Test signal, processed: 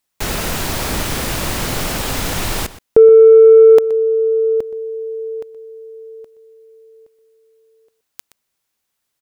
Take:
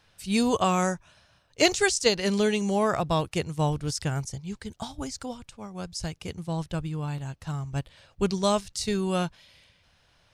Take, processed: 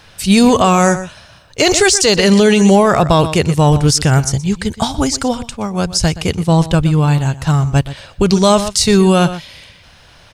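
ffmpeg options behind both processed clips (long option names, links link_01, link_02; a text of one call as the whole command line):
ffmpeg -i in.wav -filter_complex "[0:a]asplit=2[link_01][link_02];[link_02]asoftclip=type=tanh:threshold=-21.5dB,volume=-7dB[link_03];[link_01][link_03]amix=inputs=2:normalize=0,asplit=2[link_04][link_05];[link_05]adelay=122.4,volume=-16dB,highshelf=frequency=4000:gain=-2.76[link_06];[link_04][link_06]amix=inputs=2:normalize=0,alimiter=level_in=17dB:limit=-1dB:release=50:level=0:latency=1,volume=-1dB" out.wav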